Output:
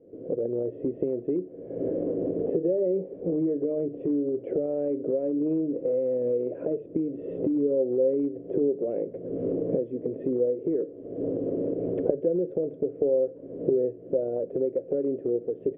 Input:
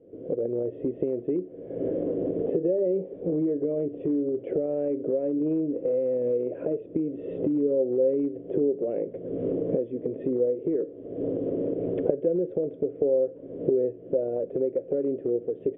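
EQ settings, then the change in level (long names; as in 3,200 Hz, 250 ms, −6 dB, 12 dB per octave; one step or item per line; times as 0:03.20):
low-pass filter 1,500 Hz 6 dB per octave
mains-hum notches 50/100/150 Hz
0.0 dB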